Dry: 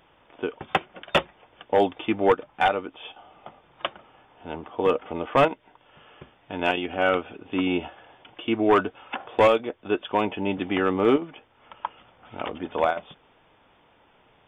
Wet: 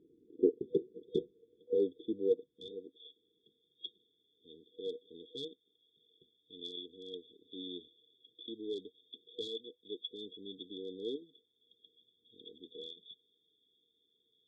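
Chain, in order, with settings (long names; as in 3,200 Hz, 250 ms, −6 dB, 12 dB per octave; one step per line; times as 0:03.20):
brick-wall band-stop 490–3,300 Hz
band-pass filter sweep 330 Hz → 2,500 Hz, 0:00.40–0:03.79
level +4.5 dB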